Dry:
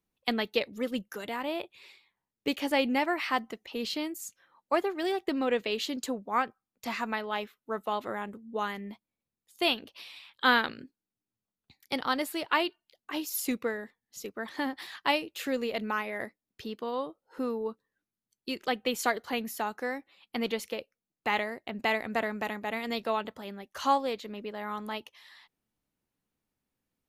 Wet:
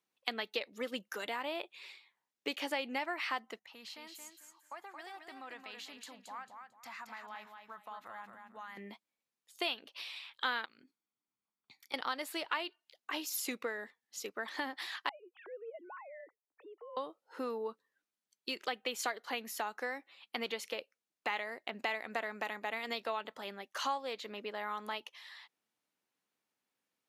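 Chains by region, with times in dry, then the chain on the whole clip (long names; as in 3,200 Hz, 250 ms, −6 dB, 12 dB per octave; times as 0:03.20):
0:03.59–0:08.77: drawn EQ curve 120 Hz 0 dB, 420 Hz −21 dB, 830 Hz −6 dB, 1,900 Hz −7 dB, 3,000 Hz −13 dB, 10,000 Hz −7 dB + downward compressor 3 to 1, threshold −46 dBFS + repeating echo 223 ms, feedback 27%, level −6 dB
0:10.65–0:11.94: comb filter 0.9 ms, depth 43% + downward compressor 5 to 1, threshold −50 dBFS + one half of a high-frequency compander decoder only
0:15.09–0:16.97: three sine waves on the formant tracks + low-pass filter 1,000 Hz + downward compressor 2 to 1, threshold −54 dBFS
whole clip: meter weighting curve A; downward compressor 3 to 1, threshold −36 dBFS; level +1 dB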